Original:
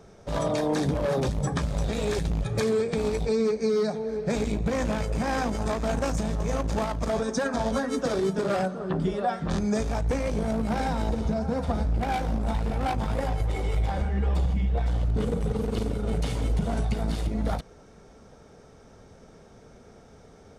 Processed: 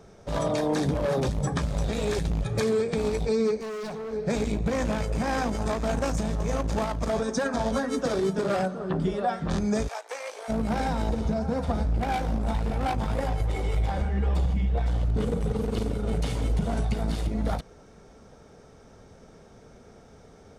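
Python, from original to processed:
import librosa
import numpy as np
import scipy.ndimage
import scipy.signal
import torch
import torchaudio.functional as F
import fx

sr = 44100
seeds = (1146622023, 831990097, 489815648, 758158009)

y = fx.clip_hard(x, sr, threshold_db=-32.5, at=(3.6, 4.13))
y = fx.bessel_highpass(y, sr, hz=800.0, order=8, at=(9.87, 10.48), fade=0.02)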